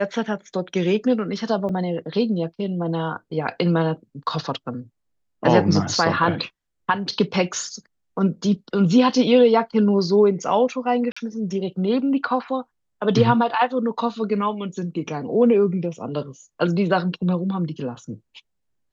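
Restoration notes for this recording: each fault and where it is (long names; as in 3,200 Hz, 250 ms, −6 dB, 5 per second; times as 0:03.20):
0:01.69: drop-out 3.8 ms
0:11.12–0:11.16: drop-out 45 ms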